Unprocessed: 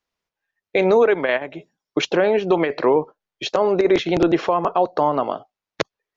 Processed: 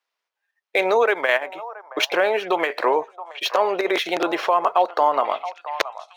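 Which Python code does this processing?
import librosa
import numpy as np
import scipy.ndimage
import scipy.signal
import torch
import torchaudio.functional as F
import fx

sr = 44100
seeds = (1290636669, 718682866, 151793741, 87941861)

y = scipy.signal.medfilt(x, 5)
y = scipy.signal.sosfilt(scipy.signal.butter(2, 680.0, 'highpass', fs=sr, output='sos'), y)
y = fx.echo_stepped(y, sr, ms=674, hz=900.0, octaves=1.4, feedback_pct=70, wet_db=-11.0)
y = F.gain(torch.from_numpy(y), 3.5).numpy()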